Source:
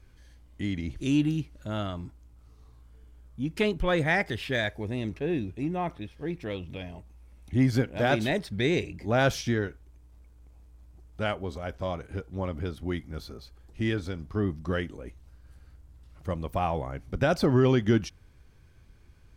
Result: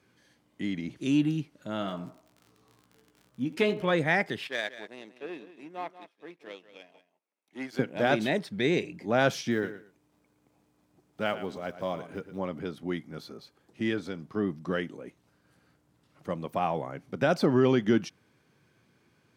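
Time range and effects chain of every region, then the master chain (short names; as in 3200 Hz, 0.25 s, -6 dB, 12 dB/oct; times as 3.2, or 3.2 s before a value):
1.8–3.9 narrowing echo 81 ms, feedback 49%, band-pass 780 Hz, level -11 dB + crackle 40/s -41 dBFS + doubler 16 ms -7.5 dB
4.47–7.79 HPF 440 Hz + echo 0.185 s -10 dB + power-law curve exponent 1.4
9.51–12.39 block floating point 7-bit + feedback echo 0.113 s, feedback 20%, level -12.5 dB
whole clip: HPF 150 Hz 24 dB/oct; high shelf 5900 Hz -4.5 dB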